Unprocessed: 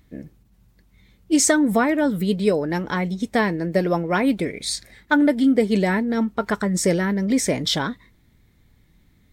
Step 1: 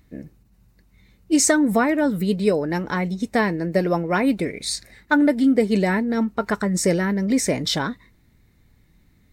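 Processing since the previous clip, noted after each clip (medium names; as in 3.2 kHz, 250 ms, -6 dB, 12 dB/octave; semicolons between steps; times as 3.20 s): band-stop 3.3 kHz, Q 8.3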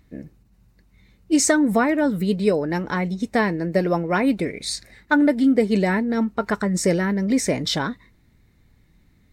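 treble shelf 9.4 kHz -5.5 dB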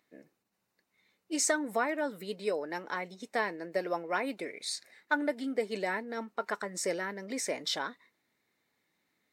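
high-pass 470 Hz 12 dB/octave; trim -8.5 dB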